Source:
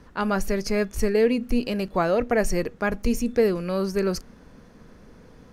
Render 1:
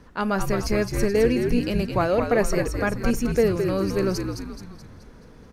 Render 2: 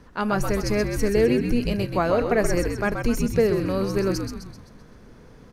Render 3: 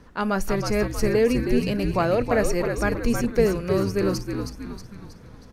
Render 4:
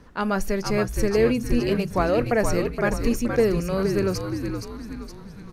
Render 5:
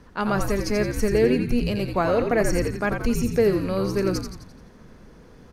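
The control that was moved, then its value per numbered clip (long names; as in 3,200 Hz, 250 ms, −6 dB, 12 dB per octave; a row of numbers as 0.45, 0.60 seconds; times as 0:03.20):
echo with shifted repeats, delay time: 214, 129, 318, 469, 86 milliseconds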